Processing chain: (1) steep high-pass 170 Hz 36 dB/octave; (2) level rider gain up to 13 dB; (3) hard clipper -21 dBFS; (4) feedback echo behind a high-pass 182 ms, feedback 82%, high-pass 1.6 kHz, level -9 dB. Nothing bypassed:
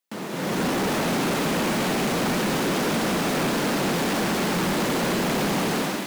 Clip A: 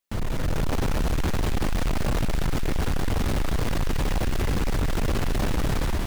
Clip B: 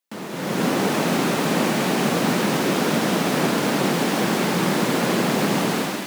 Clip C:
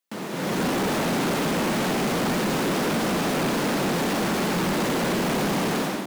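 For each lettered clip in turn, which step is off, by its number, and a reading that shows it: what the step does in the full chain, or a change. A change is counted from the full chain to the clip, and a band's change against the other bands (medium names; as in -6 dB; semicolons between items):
1, 125 Hz band +11.0 dB; 3, distortion -10 dB; 4, echo-to-direct -7.5 dB to none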